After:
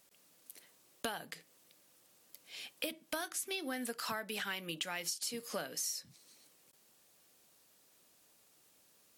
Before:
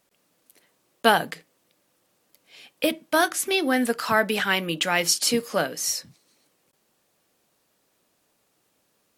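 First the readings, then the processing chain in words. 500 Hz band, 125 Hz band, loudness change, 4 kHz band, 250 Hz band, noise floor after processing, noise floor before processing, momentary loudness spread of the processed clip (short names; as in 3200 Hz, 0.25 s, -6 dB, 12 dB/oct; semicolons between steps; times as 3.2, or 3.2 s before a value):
-19.0 dB, -17.5 dB, -16.5 dB, -14.0 dB, -18.0 dB, -68 dBFS, -70 dBFS, 18 LU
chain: high shelf 2800 Hz +8.5 dB; compressor 16:1, threshold -31 dBFS, peak gain reduction 21.5 dB; soft clip -18 dBFS, distortion -25 dB; gain -4 dB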